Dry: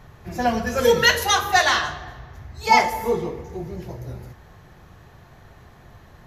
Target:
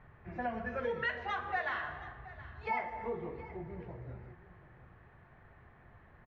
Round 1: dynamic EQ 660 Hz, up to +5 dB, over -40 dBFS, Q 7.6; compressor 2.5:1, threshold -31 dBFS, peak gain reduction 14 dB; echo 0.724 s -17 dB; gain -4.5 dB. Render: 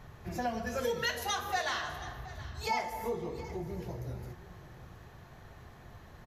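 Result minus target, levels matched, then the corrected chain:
2000 Hz band -2.5 dB
dynamic EQ 660 Hz, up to +5 dB, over -40 dBFS, Q 7.6; ladder low-pass 2500 Hz, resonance 35%; compressor 2.5:1, threshold -31 dBFS, peak gain reduction 10.5 dB; echo 0.724 s -17 dB; gain -4.5 dB

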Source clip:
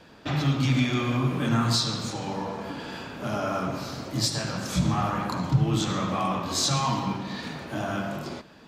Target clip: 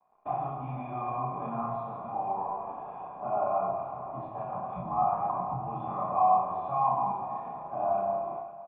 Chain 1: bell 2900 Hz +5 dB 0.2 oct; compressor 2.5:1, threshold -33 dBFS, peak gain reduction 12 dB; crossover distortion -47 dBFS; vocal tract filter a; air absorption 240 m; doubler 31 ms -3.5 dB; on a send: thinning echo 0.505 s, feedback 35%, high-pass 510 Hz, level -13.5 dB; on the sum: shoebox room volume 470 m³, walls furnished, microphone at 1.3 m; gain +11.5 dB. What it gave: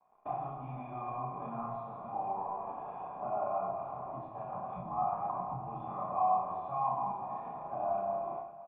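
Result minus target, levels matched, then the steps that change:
compressor: peak gain reduction +5.5 dB
change: compressor 2.5:1, threshold -24 dBFS, peak gain reduction 6.5 dB

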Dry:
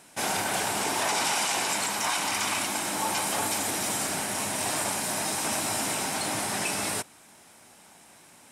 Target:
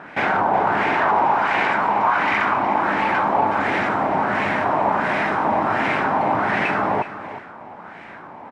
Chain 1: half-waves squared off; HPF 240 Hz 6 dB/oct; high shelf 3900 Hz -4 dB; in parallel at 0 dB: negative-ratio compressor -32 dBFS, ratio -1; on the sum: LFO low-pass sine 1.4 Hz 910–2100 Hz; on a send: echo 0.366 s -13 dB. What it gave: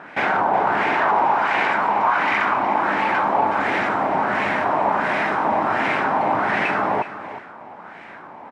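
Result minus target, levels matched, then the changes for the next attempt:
125 Hz band -3.5 dB
change: HPF 100 Hz 6 dB/oct

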